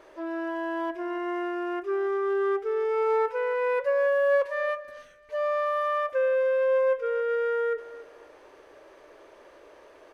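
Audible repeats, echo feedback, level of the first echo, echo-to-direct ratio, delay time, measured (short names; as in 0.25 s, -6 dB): 2, 25%, -17.0 dB, -17.0 dB, 0.274 s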